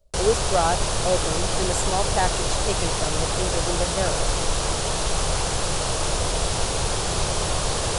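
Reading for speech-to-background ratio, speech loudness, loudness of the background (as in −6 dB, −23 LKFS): −3.5 dB, −27.5 LKFS, −24.0 LKFS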